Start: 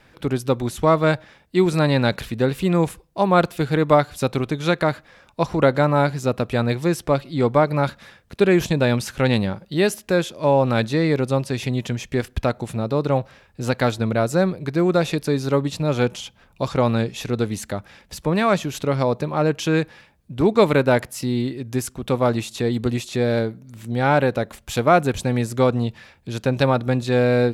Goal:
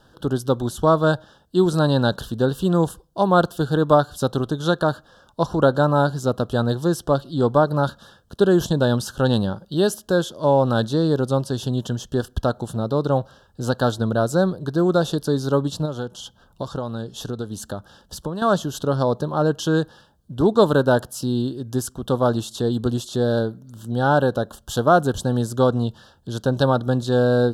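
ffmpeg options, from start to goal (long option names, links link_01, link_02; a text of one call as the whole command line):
ffmpeg -i in.wav -filter_complex "[0:a]asettb=1/sr,asplit=3[link_01][link_02][link_03];[link_01]atrim=end=15.854[link_04];[link_02]atrim=start=15.85:end=18.42,asetpts=PTS-STARTPTS,afade=type=in:duration=0.004:curve=qsin,afade=type=out:start_time=2.566:duration=0.004:curve=qsin,acompressor=threshold=-25dB:ratio=6[link_05];[link_03]atrim=start=18.416[link_06];[link_04][link_05]acrossfade=duration=0.004:curve1=hsin:curve2=qsin[link_07];[link_07][link_06]acrossfade=duration=0.004:curve1=qsin:curve2=hsin,asuperstop=centerf=2200:order=8:qfactor=1.7" out.wav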